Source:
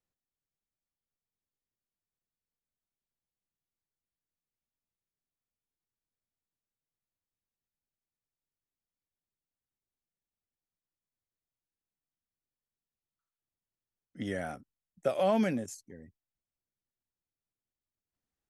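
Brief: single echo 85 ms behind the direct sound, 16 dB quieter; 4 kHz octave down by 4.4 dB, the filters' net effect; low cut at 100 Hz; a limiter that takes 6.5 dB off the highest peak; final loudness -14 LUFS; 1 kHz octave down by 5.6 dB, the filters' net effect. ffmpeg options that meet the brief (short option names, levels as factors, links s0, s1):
-af "highpass=100,equalizer=f=1000:t=o:g=-8.5,equalizer=f=4000:t=o:g=-5.5,alimiter=level_in=1.12:limit=0.0631:level=0:latency=1,volume=0.891,aecho=1:1:85:0.158,volume=14.1"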